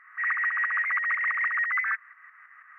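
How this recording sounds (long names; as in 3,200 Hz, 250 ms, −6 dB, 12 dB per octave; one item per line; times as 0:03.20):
tremolo saw up 6.1 Hz, depth 60%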